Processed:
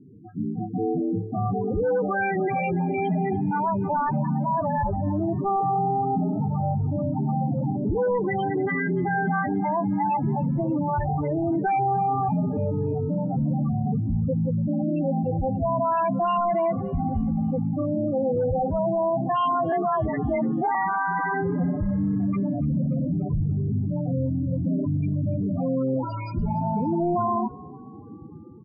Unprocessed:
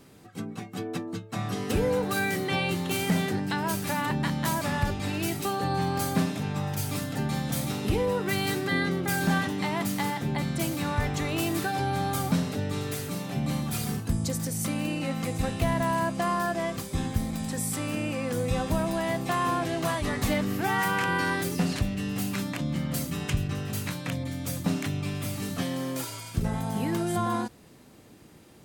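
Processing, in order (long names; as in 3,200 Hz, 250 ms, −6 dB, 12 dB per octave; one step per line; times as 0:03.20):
running median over 5 samples
dynamic equaliser 760 Hz, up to +7 dB, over −43 dBFS, Q 0.96
automatic gain control gain up to 6 dB
in parallel at +2.5 dB: brickwall limiter −14.5 dBFS, peak gain reduction 8 dB
on the sum: downsampling to 22,050 Hz
soft clipping −20 dBFS, distortion −7 dB
spectral peaks only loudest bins 8
on a send: echo with shifted repeats 289 ms, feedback 53%, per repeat +36 Hz, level −22 dB
0:19.72–0:20.75: on the sum: frequency shifter +30 Hz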